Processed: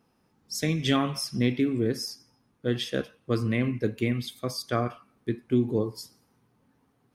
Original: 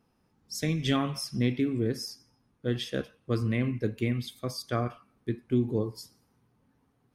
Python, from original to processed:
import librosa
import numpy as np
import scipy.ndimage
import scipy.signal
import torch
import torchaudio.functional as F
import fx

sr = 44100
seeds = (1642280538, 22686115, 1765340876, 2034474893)

y = fx.low_shelf(x, sr, hz=88.0, db=-9.0)
y = F.gain(torch.from_numpy(y), 3.5).numpy()